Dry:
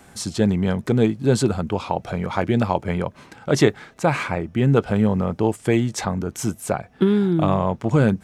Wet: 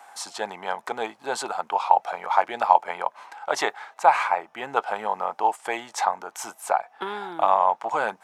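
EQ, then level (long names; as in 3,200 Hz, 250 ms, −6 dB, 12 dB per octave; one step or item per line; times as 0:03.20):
high-pass with resonance 830 Hz, resonance Q 3.8
parametric band 1,200 Hz +3 dB 2.3 octaves
−4.5 dB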